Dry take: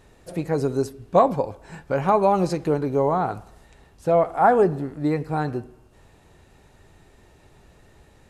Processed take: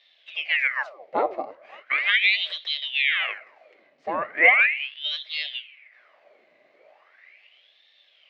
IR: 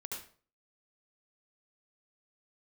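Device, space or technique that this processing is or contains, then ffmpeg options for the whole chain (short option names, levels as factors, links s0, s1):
voice changer toy: -af "aeval=exprs='val(0)*sin(2*PI*1900*n/s+1900*0.9/0.38*sin(2*PI*0.38*n/s))':c=same,highpass=600,equalizer=f=600:t=q:w=4:g=10,equalizer=f=940:t=q:w=4:g=-9,equalizer=f=1400:t=q:w=4:g=-7,equalizer=f=2100:t=q:w=4:g=8,equalizer=f=3400:t=q:w=4:g=-5,lowpass=f=3900:w=0.5412,lowpass=f=3900:w=1.3066"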